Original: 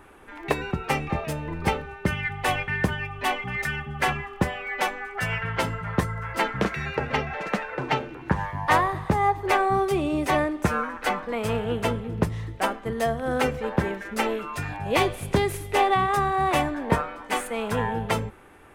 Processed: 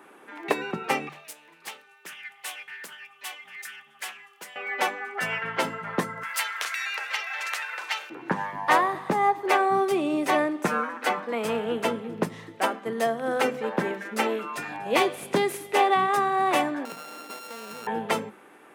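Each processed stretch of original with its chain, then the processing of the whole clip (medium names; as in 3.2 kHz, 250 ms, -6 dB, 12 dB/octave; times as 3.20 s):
1.09–4.56 s: pre-emphasis filter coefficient 0.97 + loudspeaker Doppler distortion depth 0.69 ms
6.23–8.10 s: high-pass 1 kHz + compression 2:1, threshold -31 dBFS + tilt EQ +4.5 dB/octave
16.85–17.87 s: sorted samples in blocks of 32 samples + compression, threshold -36 dBFS
whole clip: high-pass 190 Hz 24 dB/octave; hum notches 50/100/150/200/250 Hz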